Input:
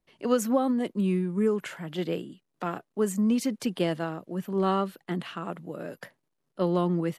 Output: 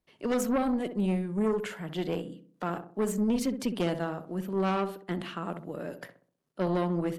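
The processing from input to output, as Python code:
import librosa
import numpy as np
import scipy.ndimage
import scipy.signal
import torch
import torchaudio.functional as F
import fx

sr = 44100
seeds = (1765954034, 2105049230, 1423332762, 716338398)

y = fx.echo_filtered(x, sr, ms=64, feedback_pct=48, hz=1000.0, wet_db=-8.5)
y = fx.cheby_harmonics(y, sr, harmonics=(4, 5), levels_db=(-12, -14), full_scale_db=-12.0)
y = F.gain(torch.from_numpy(y), -7.0).numpy()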